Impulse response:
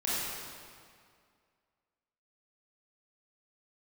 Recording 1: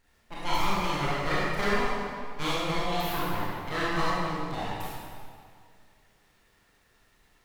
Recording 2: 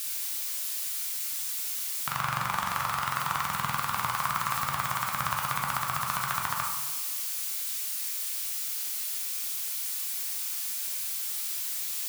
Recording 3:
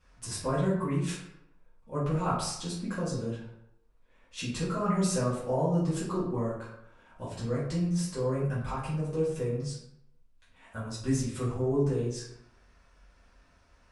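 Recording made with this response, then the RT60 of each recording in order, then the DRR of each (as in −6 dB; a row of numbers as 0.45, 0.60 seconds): 1; 2.1, 1.2, 0.75 seconds; −9.0, −1.0, −11.5 decibels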